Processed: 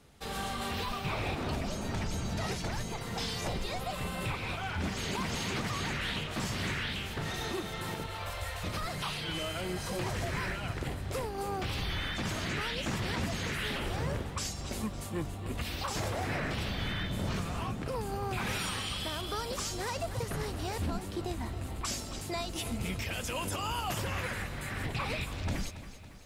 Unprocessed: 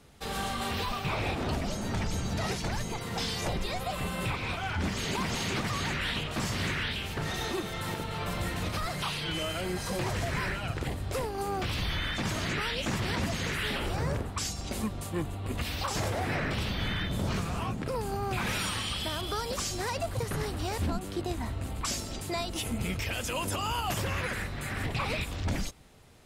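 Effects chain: 8.07–8.64 elliptic band-stop 100–510 Hz; lo-fi delay 0.278 s, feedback 55%, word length 10-bit, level -13 dB; gain -3 dB

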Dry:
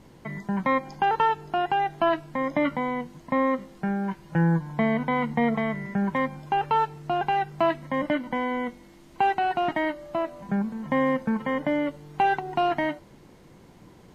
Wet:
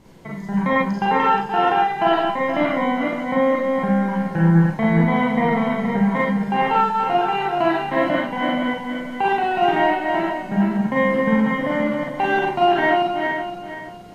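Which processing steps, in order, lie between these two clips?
regenerating reverse delay 0.237 s, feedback 55%, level -3.5 dB; Schroeder reverb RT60 0.34 s, combs from 33 ms, DRR -3 dB

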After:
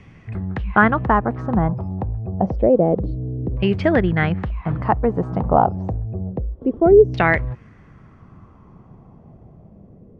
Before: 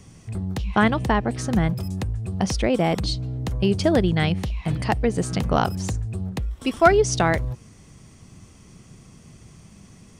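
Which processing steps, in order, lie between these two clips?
LFO low-pass saw down 0.28 Hz 370–2300 Hz; gain +1.5 dB

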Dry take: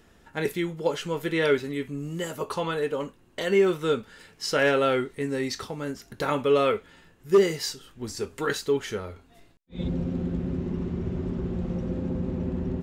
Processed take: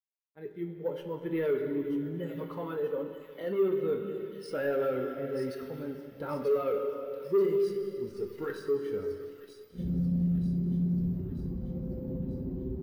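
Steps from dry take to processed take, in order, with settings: opening faded in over 0.99 s; high shelf 2400 Hz -6.5 dB; Schroeder reverb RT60 3.2 s, combs from 31 ms, DRR 3 dB; in parallel at -2 dB: limiter -17.5 dBFS, peak gain reduction 7.5 dB; on the sum: soft clip -17.5 dBFS, distortion -12 dB; flange 0.93 Hz, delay 5.1 ms, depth 2.1 ms, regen -78%; crossover distortion -49 dBFS; careless resampling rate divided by 3×, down filtered, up hold; thin delay 0.937 s, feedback 64%, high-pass 3000 Hz, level -3 dB; spectral expander 1.5:1

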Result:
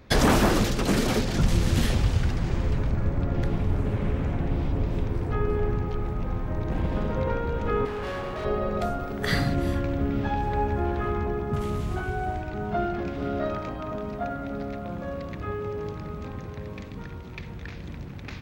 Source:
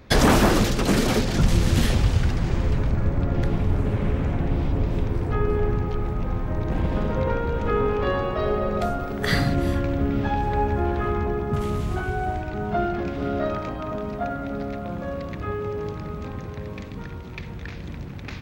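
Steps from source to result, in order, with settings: 7.85–8.45 hard clip -26.5 dBFS, distortion -21 dB; gain -3 dB

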